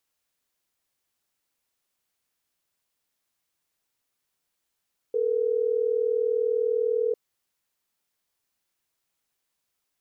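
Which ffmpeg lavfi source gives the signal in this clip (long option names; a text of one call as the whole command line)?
ffmpeg -f lavfi -i "aevalsrc='0.0596*(sin(2*PI*440*t)+sin(2*PI*480*t))*clip(min(mod(t,6),2-mod(t,6))/0.005,0,1)':duration=3.12:sample_rate=44100" out.wav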